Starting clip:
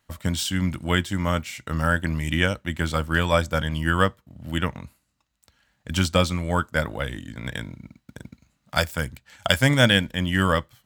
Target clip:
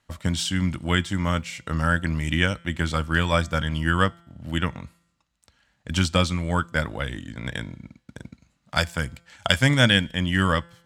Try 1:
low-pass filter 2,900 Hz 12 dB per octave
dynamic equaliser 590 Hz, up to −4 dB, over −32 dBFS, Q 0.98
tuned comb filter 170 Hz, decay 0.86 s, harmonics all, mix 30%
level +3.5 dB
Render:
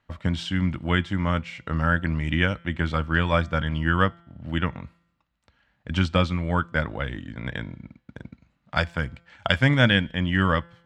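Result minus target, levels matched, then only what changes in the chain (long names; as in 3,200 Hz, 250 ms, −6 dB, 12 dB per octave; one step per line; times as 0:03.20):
8,000 Hz band −15.0 dB
change: low-pass filter 9,300 Hz 12 dB per octave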